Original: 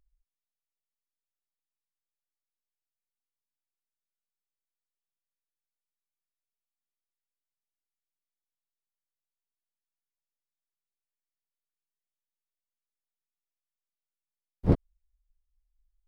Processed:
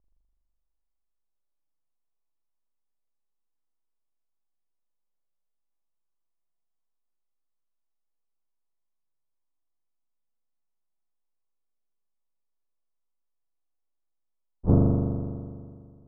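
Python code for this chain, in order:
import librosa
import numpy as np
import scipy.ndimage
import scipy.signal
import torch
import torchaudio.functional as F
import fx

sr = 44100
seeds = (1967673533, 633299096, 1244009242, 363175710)

y = scipy.signal.sosfilt(scipy.signal.butter(6, 1200.0, 'lowpass', fs=sr, output='sos'), x)
y = fx.rev_spring(y, sr, rt60_s=2.1, pass_ms=(41,), chirp_ms=50, drr_db=-4.5)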